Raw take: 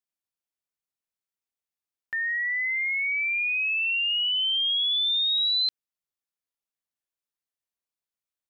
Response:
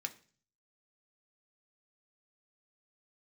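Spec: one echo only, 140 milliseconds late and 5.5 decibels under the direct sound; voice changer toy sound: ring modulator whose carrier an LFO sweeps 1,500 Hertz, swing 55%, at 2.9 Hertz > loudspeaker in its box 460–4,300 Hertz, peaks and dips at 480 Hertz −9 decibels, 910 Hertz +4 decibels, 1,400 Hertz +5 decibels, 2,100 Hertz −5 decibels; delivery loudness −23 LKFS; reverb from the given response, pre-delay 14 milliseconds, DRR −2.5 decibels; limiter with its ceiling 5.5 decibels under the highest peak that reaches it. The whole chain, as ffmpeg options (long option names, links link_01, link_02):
-filter_complex "[0:a]alimiter=level_in=2dB:limit=-24dB:level=0:latency=1,volume=-2dB,aecho=1:1:140:0.531,asplit=2[link_01][link_02];[1:a]atrim=start_sample=2205,adelay=14[link_03];[link_02][link_03]afir=irnorm=-1:irlink=0,volume=3.5dB[link_04];[link_01][link_04]amix=inputs=2:normalize=0,aeval=exprs='val(0)*sin(2*PI*1500*n/s+1500*0.55/2.9*sin(2*PI*2.9*n/s))':channel_layout=same,highpass=460,equalizer=frequency=480:width_type=q:width=4:gain=-9,equalizer=frequency=910:width_type=q:width=4:gain=4,equalizer=frequency=1400:width_type=q:width=4:gain=5,equalizer=frequency=2100:width_type=q:width=4:gain=-5,lowpass=frequency=4300:width=0.5412,lowpass=frequency=4300:width=1.3066,volume=2.5dB"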